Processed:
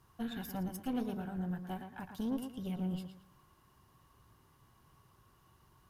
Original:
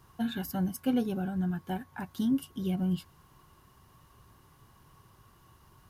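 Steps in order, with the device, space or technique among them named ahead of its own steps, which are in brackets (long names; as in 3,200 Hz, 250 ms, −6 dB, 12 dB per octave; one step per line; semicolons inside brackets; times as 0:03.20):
rockabilly slapback (tube saturation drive 27 dB, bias 0.65; tape delay 114 ms, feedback 34%, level −6 dB, low-pass 3,600 Hz)
level −3.5 dB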